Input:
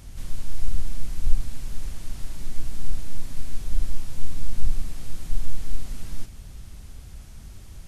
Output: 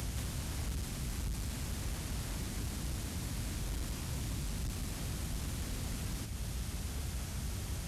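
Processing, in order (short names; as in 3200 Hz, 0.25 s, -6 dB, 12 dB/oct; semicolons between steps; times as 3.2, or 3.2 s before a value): HPF 51 Hz 24 dB/oct; soft clip -33 dBFS, distortion -13 dB; three-band squash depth 100%; gain +3 dB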